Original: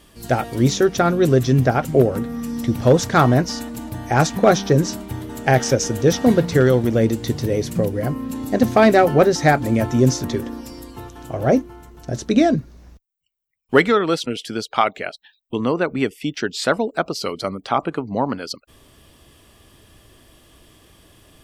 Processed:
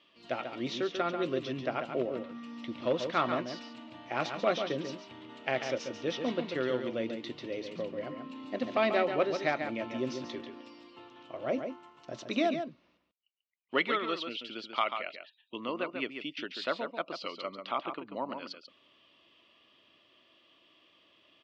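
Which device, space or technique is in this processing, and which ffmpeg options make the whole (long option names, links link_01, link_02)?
phone earpiece: -filter_complex "[0:a]highpass=420,equalizer=frequency=440:width_type=q:width=4:gain=-9,equalizer=frequency=790:width_type=q:width=4:gain=-10,equalizer=frequency=1600:width_type=q:width=4:gain=-9,equalizer=frequency=2800:width_type=q:width=4:gain=5,lowpass=frequency=3900:width=0.5412,lowpass=frequency=3900:width=1.3066,asettb=1/sr,asplit=3[link_01][link_02][link_03];[link_01]atrim=end=11.584[link_04];[link_02]atrim=start=11.58:end=12.5,asetpts=PTS-STARTPTS,afade=type=in:duration=0.004:curve=qsin,afade=type=out:start_time=0.916:duration=0.004:curve=qsin,equalizer=frequency=125:width_type=o:width=1:gain=4,equalizer=frequency=1000:width_type=o:width=1:gain=8,equalizer=frequency=8000:width_type=o:width=1:gain=11[link_05];[link_03]atrim=start=12.496[link_06];[link_04][link_05]acrossfade=duration=0.004:curve1=hsin:curve2=qsin[link_07];[link_07][link_06]acrossfade=duration=0.004:curve1=qsin:curve2=hsin,asplit=2[link_08][link_09];[link_09]adelay=139.9,volume=-7dB,highshelf=frequency=4000:gain=-3.15[link_10];[link_08][link_10]amix=inputs=2:normalize=0,volume=-8.5dB"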